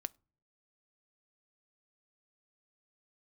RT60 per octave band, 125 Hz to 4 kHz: 0.75, 0.55, 0.40, 0.35, 0.25, 0.25 s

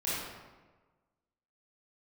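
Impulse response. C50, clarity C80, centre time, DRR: -3.5 dB, 0.5 dB, 0.1 s, -10.5 dB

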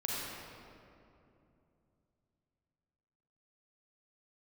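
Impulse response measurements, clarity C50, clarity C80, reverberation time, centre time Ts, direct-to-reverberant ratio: -4.0 dB, -2.0 dB, 2.8 s, 0.165 s, -5.5 dB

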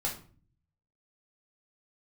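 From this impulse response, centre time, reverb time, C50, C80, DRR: 22 ms, 0.45 s, 8.5 dB, 14.0 dB, -2.5 dB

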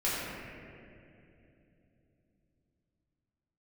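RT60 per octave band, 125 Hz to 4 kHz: 4.8, 4.4, 3.5, 2.3, 2.4, 1.8 s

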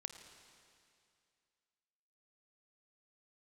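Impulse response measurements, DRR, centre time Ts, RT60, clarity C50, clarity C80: 6.5 dB, 37 ms, 2.4 s, 7.0 dB, 8.0 dB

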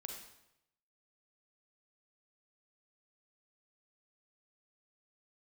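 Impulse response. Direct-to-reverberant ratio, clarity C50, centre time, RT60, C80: 2.0 dB, 3.5 dB, 38 ms, 0.85 s, 6.0 dB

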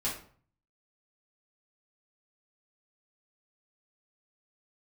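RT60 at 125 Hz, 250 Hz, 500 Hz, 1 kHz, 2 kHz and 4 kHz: 0.75, 0.55, 0.50, 0.50, 0.40, 0.35 s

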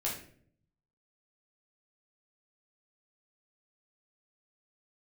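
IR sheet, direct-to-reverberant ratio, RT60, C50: -5.0 dB, 0.55 s, 5.5 dB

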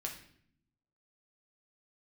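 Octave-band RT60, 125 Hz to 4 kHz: 1.2, 1.1, 0.70, 0.55, 0.60, 0.55 s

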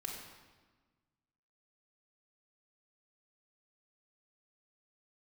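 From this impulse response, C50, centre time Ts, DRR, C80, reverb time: 2.5 dB, 57 ms, -0.5 dB, 4.5 dB, 1.4 s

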